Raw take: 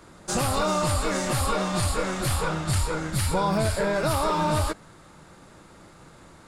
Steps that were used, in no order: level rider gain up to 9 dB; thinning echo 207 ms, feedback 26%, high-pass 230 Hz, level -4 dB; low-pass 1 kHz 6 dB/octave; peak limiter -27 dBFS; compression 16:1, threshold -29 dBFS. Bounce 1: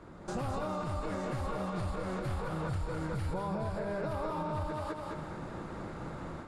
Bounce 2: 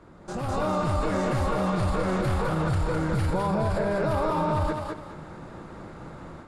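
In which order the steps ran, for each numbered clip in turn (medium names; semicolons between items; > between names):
thinning echo > level rider > compression > low-pass > peak limiter; low-pass > peak limiter > thinning echo > compression > level rider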